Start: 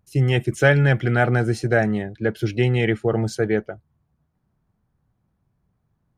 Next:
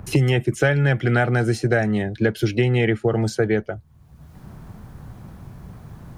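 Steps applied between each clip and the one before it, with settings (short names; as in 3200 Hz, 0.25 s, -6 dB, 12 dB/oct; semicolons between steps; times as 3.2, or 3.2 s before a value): three-band squash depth 100%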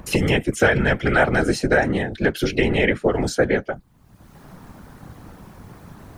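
low shelf 240 Hz -9 dB; whisperiser; gain +4 dB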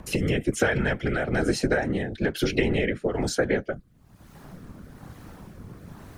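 compressor, threshold -18 dBFS, peak gain reduction 8 dB; rotary speaker horn 1.1 Hz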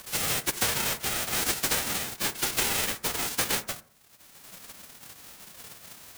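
spectral whitening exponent 0.1; reverb RT60 0.60 s, pre-delay 46 ms, DRR 16.5 dB; gain -4 dB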